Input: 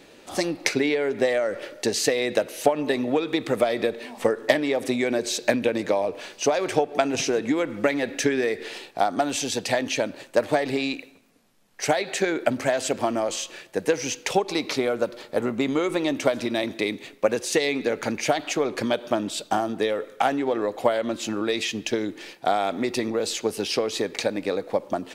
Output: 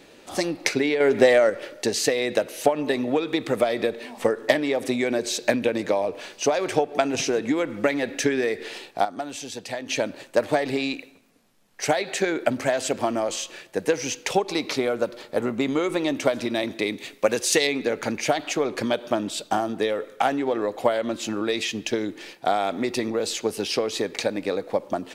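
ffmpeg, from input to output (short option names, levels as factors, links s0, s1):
-filter_complex "[0:a]asettb=1/sr,asplit=3[s0][s1][s2];[s0]atrim=end=1.004[s3];[s1]atrim=start=1:end=1.5,asetpts=PTS-STARTPTS,afade=t=in:d=0.004:c=qsin,afade=t=out:st=0.496:d=0.004:c=qsin,acontrast=66[s4];[s2]atrim=start=1.496[s5];[s3][s4]acrossfade=d=0.004:c1=hsin:c2=qsin[s6];[s6][s5]acrossfade=d=0.004:c1=qsin:c2=hsin,asettb=1/sr,asplit=3[s7][s8][s9];[s7]atrim=end=16.984[s10];[s8]atrim=start=16.98:end=17.67,asetpts=PTS-STARTPTS,afade=t=in:d=0.004:c=qsin,afade=t=out:st=0.686:d=0.004:c=qsin,highshelf=f=2200:g=7[s11];[s9]atrim=start=17.666[s12];[s10][s11]acrossfade=d=0.004:c1=hsin:c2=qsin[s13];[s13][s12]acrossfade=d=0.004:c1=qsin:c2=hsin,asplit=3[s14][s15][s16];[s14]atrim=end=9.052[s17];[s15]atrim=start=9.048:end=9.892,asetpts=PTS-STARTPTS,volume=0.398[s18];[s16]atrim=start=9.888[s19];[s17][s18]acrossfade=d=0.004:c1=hsin:c2=hsin[s20];[s20][s19]acrossfade=d=0.004:c1=hsin:c2=hsin"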